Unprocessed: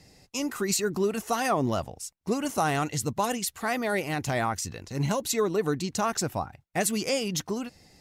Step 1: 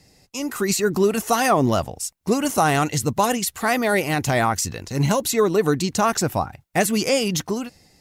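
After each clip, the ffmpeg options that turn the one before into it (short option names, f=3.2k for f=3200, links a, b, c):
-filter_complex "[0:a]acrossover=split=2600[a][b];[b]alimiter=limit=-22.5dB:level=0:latency=1:release=143[c];[a][c]amix=inputs=2:normalize=0,highshelf=f=8.5k:g=5,dynaudnorm=f=120:g=9:m=8dB"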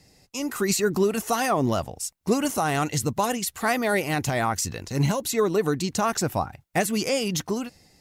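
-af "alimiter=limit=-9.5dB:level=0:latency=1:release=442,volume=-2dB"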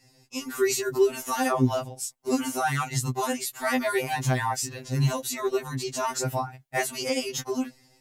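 -af "afftfilt=real='re*2.45*eq(mod(b,6),0)':imag='im*2.45*eq(mod(b,6),0)':win_size=2048:overlap=0.75"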